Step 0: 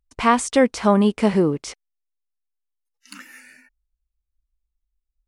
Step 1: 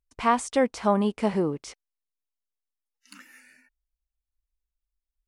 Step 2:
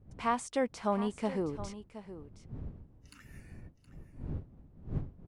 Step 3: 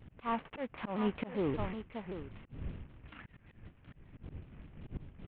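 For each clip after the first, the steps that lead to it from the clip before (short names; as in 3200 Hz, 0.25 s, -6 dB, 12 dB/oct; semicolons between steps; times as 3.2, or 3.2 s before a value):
dynamic EQ 800 Hz, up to +5 dB, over -30 dBFS, Q 1.3; gain -8 dB
wind noise 140 Hz -37 dBFS; echo 0.719 s -13.5 dB; gain -8.5 dB
CVSD 16 kbps; auto swell 0.272 s; shaped vibrato saw down 5.2 Hz, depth 160 cents; gain +4.5 dB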